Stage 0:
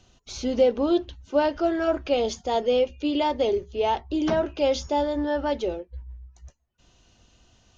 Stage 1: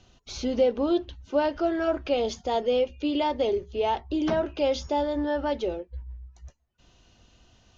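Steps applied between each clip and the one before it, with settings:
low-pass filter 6,100 Hz 12 dB per octave
in parallel at −3 dB: downward compressor, threshold −29 dBFS, peak gain reduction 13.5 dB
on the sum: level −4 dB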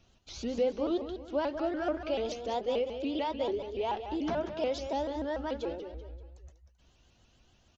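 repeating echo 192 ms, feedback 40%, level −9 dB
pitch modulation by a square or saw wave saw up 6.9 Hz, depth 160 cents
level −7 dB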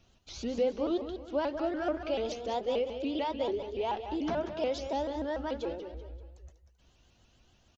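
repeating echo 181 ms, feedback 42%, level −22 dB

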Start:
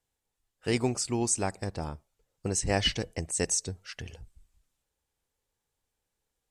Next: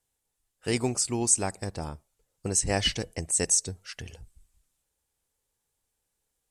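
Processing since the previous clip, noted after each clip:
parametric band 10,000 Hz +8 dB 1.1 octaves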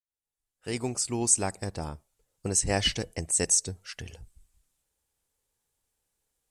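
fade in at the beginning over 1.32 s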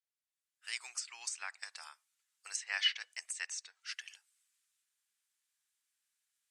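high-pass filter 1,400 Hz 24 dB per octave
treble cut that deepens with the level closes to 2,900 Hz, closed at −26 dBFS
high-shelf EQ 9,700 Hz −8.5 dB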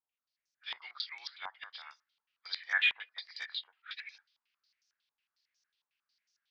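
hearing-aid frequency compression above 1,700 Hz 1.5 to 1
harmonic generator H 7 −30 dB, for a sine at −21.5 dBFS
low-pass on a step sequencer 11 Hz 960–5,900 Hz

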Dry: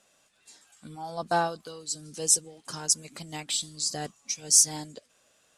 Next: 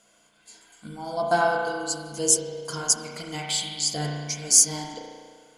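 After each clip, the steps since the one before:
EQ curve with evenly spaced ripples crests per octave 1.8, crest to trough 9 dB
spring reverb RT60 1.7 s, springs 34 ms, chirp 60 ms, DRR −1 dB
level +2 dB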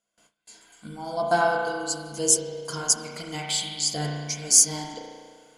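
noise gate with hold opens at −49 dBFS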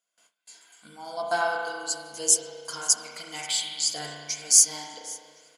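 high-pass filter 1,000 Hz 6 dB per octave
repeating echo 533 ms, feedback 48%, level −22 dB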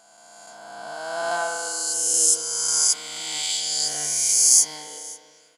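peak hold with a rise ahead of every peak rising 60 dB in 2.26 s
level −3 dB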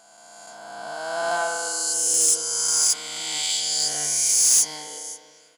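soft clipping −13 dBFS, distortion −14 dB
level +1.5 dB

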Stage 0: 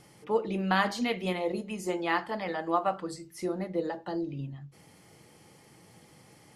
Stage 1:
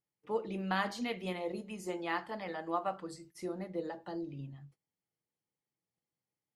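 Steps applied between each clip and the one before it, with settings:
noise gate −49 dBFS, range −32 dB
level −7 dB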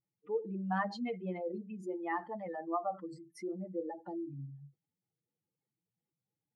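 expanding power law on the bin magnitudes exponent 2.3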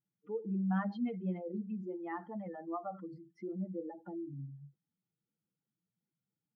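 high-frequency loss of the air 270 metres
hollow resonant body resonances 200/1,400/3,200 Hz, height 11 dB, ringing for 25 ms
level −5.5 dB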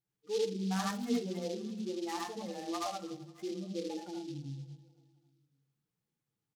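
repeating echo 270 ms, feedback 57%, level −22 dB
convolution reverb RT60 0.20 s, pre-delay 71 ms, DRR −0.5 dB
short delay modulated by noise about 4,100 Hz, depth 0.068 ms

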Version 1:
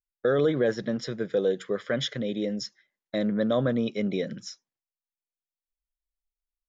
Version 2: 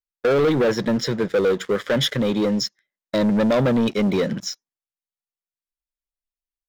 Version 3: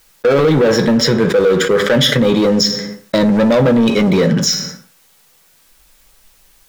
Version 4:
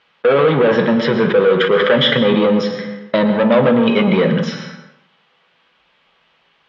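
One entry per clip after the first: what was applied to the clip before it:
leveller curve on the samples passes 3
on a send at −6 dB: convolution reverb RT60 0.45 s, pre-delay 3 ms; on the sum: envelope flattener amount 70%; level +2.5 dB
loudspeaker in its box 170–3,200 Hz, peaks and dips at 300 Hz −7 dB, 1,100 Hz +3 dB, 3,100 Hz +5 dB; dense smooth reverb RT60 0.62 s, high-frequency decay 0.75×, pre-delay 100 ms, DRR 9 dB

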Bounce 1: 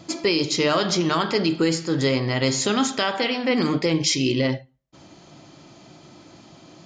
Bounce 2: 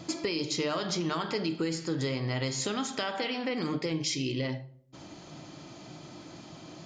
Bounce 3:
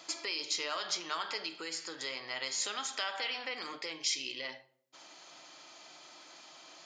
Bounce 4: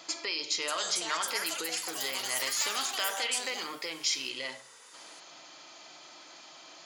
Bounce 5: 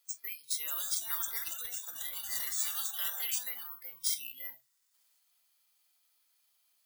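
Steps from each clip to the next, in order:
downward compressor 3 to 1, threshold −32 dBFS, peak gain reduction 12 dB; rectangular room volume 950 cubic metres, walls furnished, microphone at 0.48 metres
Bessel high-pass filter 1,100 Hz, order 2
delay with pitch and tempo change per echo 619 ms, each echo +7 semitones, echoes 3; level +3 dB
bad sample-rate conversion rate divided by 3×, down none, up zero stuff; noise reduction from a noise print of the clip's start 20 dB; guitar amp tone stack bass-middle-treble 5-5-5

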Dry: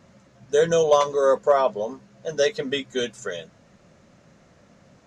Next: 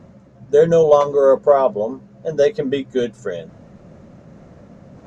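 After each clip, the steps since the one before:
tilt shelving filter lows +8 dB, about 1,200 Hz
reversed playback
upward compression, threshold −36 dBFS
reversed playback
level +1 dB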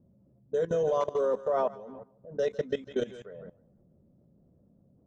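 feedback echo with a high-pass in the loop 156 ms, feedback 50%, high-pass 740 Hz, level −8.5 dB
output level in coarse steps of 18 dB
low-pass that shuts in the quiet parts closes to 380 Hz, open at −21 dBFS
level −8 dB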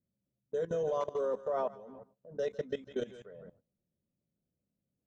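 noise gate −55 dBFS, range −18 dB
level −5.5 dB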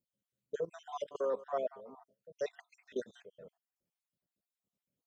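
time-frequency cells dropped at random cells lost 56%
low-shelf EQ 290 Hz −10.5 dB
level +2.5 dB

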